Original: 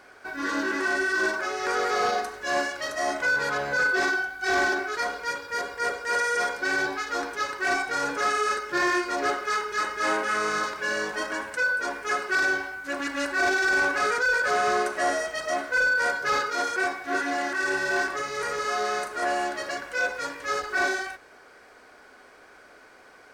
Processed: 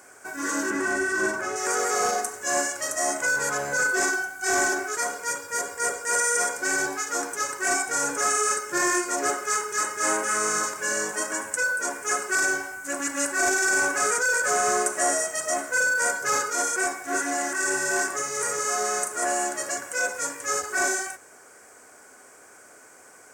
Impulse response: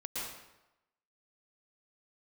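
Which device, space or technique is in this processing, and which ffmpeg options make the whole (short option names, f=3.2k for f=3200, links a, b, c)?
budget condenser microphone: -filter_complex "[0:a]highpass=f=74:w=0.5412,highpass=f=74:w=1.3066,highshelf=f=5.5k:t=q:w=3:g=11.5,asettb=1/sr,asplit=3[a][b][c];[a]atrim=end=0.704[d];[b]atrim=start=0.7:end=1.56,asetpts=PTS-STARTPTS,afade=t=in:d=0.004:c=qsin,afade=t=out:st=0.856:d=0.004:c=qsin,bass=f=250:g=10,treble=f=4k:g=-8[e];[c]atrim=start=1.556[f];[d][e]acrossfade=d=0.004:c1=hsin:c2=qsin[g];[g][f]acrossfade=d=0.004:c1=qsin:c2=hsin"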